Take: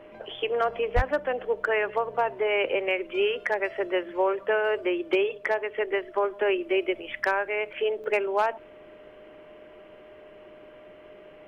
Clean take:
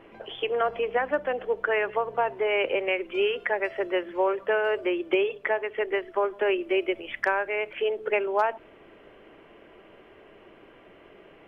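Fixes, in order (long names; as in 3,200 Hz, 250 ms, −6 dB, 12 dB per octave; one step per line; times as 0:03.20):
clipped peaks rebuilt −15 dBFS
notch filter 610 Hz, Q 30
high-pass at the plosives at 0:00.95
repair the gap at 0:08.04, 1.9 ms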